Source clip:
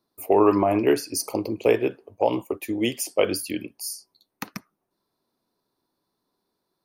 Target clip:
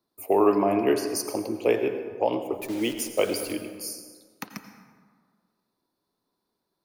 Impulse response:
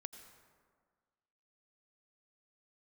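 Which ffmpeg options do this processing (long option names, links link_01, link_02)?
-filter_complex "[0:a]acrossover=split=140[link_01][link_02];[link_01]acompressor=threshold=-48dB:ratio=6[link_03];[link_03][link_02]amix=inputs=2:normalize=0,asettb=1/sr,asplit=3[link_04][link_05][link_06];[link_04]atrim=end=2.584[link_07];[link_05]atrim=start=2.58:end=3.53,asetpts=PTS-STARTPTS,afade=type=in:duration=0.004:curve=qsin,afade=type=out:start_time=0.946:duration=0.004:curve=qsin,acrusher=bits=7:dc=4:mix=0:aa=0.000001[link_08];[link_06]atrim=start=3.526[link_09];[link_07][link_08]acrossfade=duration=0.004:curve1=hsin:curve2=qsin[link_10];[link_10][link_09]acrossfade=duration=0.004:curve1=qsin:curve2=hsin[link_11];[1:a]atrim=start_sample=2205[link_12];[link_11][link_12]afir=irnorm=-1:irlink=0,volume=2dB"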